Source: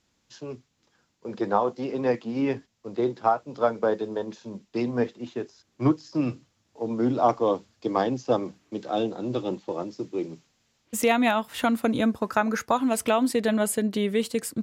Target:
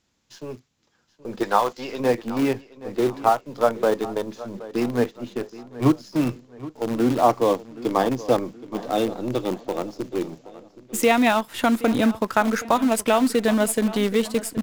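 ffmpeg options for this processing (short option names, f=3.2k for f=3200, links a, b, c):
-filter_complex "[0:a]asettb=1/sr,asplit=3[a][b][c];[a]atrim=end=1.434[d];[b]atrim=start=1.43:end=2,asetpts=PTS-STARTPTS,afade=t=in:d=0.004:c=qsin,afade=t=out:st=0.566:d=0.004:c=qsin,tiltshelf=f=770:g=-8.5[e];[c]atrim=start=1.996[f];[d][e]acrossfade=d=0.004:c1=hsin:c2=qsin[g];[g][f]acrossfade=d=0.004:c1=qsin:c2=hsin,asplit=2[h][i];[i]acrusher=bits=5:dc=4:mix=0:aa=0.000001,volume=-6dB[j];[h][j]amix=inputs=2:normalize=0,asplit=2[k][l];[l]adelay=773,lowpass=f=4.7k:p=1,volume=-17dB,asplit=2[m][n];[n]adelay=773,lowpass=f=4.7k:p=1,volume=0.4,asplit=2[o][p];[p]adelay=773,lowpass=f=4.7k:p=1,volume=0.4[q];[k][m][o][q]amix=inputs=4:normalize=0"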